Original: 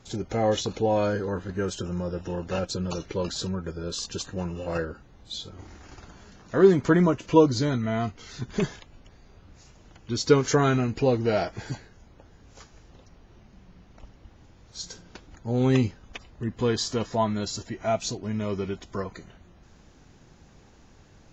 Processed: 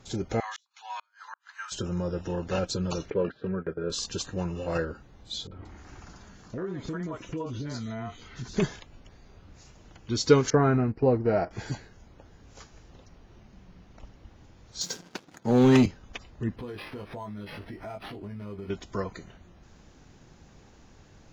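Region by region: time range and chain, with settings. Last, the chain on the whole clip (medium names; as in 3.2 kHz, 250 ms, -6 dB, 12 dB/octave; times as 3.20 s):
0.40–1.72 s: steep high-pass 930 Hz 48 dB/octave + inverted gate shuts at -27 dBFS, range -39 dB
3.10–3.90 s: cabinet simulation 130–2400 Hz, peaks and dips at 430 Hz +6 dB, 900 Hz -8 dB, 1.6 kHz +5 dB + gate -38 dBFS, range -12 dB
5.47–8.57 s: three bands offset in time lows, mids, highs 40/180 ms, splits 490/3200 Hz + compression 5:1, threshold -32 dBFS
10.50–11.51 s: boxcar filter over 13 samples + gate -29 dBFS, range -9 dB
14.81–15.86 s: high-pass 140 Hz 24 dB/octave + waveshaping leveller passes 2
16.56–18.70 s: doubling 20 ms -3 dB + compression, threshold -36 dBFS + decimation joined by straight lines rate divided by 6×
whole clip: none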